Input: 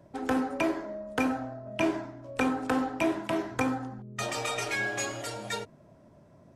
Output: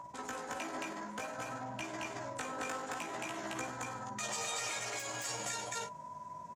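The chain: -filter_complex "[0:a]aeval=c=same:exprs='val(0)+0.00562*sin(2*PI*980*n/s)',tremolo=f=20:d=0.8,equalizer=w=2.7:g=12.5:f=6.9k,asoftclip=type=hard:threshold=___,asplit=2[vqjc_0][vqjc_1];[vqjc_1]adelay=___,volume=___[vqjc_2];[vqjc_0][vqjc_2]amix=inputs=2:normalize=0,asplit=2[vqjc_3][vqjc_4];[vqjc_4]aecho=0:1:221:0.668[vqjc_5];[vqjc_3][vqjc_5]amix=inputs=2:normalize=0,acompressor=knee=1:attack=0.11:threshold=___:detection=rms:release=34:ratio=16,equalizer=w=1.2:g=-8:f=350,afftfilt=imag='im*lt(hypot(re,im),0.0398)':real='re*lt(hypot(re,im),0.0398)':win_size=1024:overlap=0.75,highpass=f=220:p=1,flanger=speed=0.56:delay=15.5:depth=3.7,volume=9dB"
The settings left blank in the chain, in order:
-19.5dB, 13, -13dB, -35dB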